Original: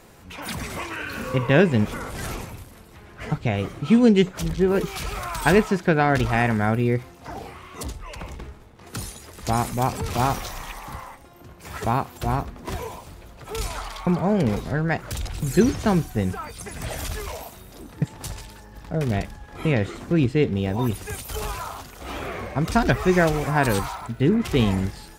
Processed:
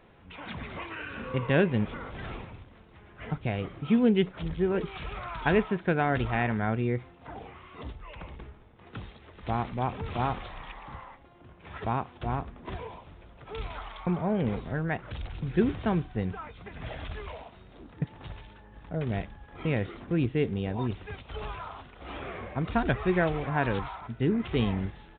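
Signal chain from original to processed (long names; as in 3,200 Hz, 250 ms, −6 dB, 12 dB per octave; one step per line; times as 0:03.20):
downsampling to 8,000 Hz
level −7 dB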